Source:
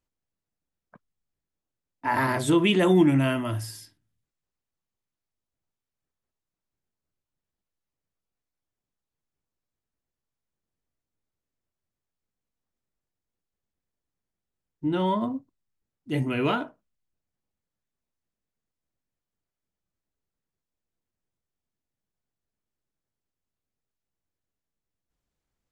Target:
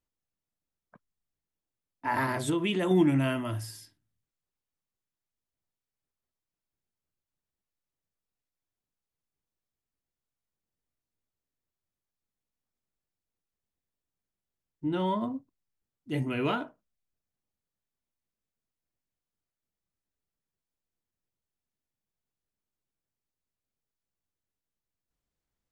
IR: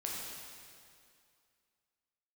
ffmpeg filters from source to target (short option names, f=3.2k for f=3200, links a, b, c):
-filter_complex "[0:a]asettb=1/sr,asplit=3[a][b][c];[a]atrim=end=2.234[d];[b]atrim=start=2.23:end=2.91,asetpts=PTS-STARTPTS,afade=t=in:d=0.004:c=qsin,afade=t=out:st=0.676:d=0.004:c=qsin,acompressor=threshold=-21dB:ratio=6[e];[c]atrim=start=2.906[f];[d][e]acrossfade=d=0.004:c1=hsin:c2=qsin[g];[g][f]acrossfade=d=0.004:c1=qsin:c2=hsin,volume=-4dB"